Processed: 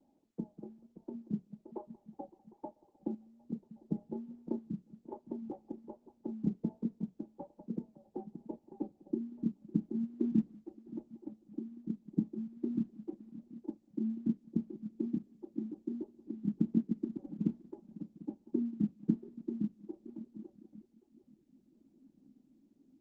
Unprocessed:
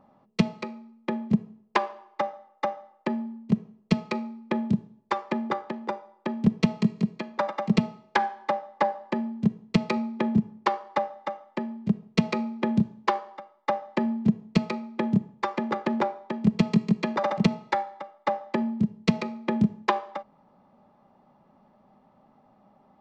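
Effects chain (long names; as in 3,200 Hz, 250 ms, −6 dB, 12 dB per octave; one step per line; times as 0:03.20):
low-pass filter sweep 640 Hz → 300 Hz, 0:07.35–0:09.55
echo machine with several playback heads 188 ms, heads first and third, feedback 45%, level −17.5 dB
in parallel at +1.5 dB: downward compressor 8 to 1, threshold −36 dBFS, peak gain reduction 24.5 dB
on the sum: sample-and-hold tremolo
formant resonators in series u
parametric band 1,000 Hz −3.5 dB 0.64 octaves
convolution reverb, pre-delay 3 ms, DRR 6.5 dB
reverb reduction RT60 0.81 s
low-pass filter 2,900 Hz 12 dB per octave
dynamic equaliser 620 Hz, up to −5 dB, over −52 dBFS, Q 2.3
pitch vibrato 1.2 Hz 76 cents
level −4.5 dB
Opus 12 kbit/s 48,000 Hz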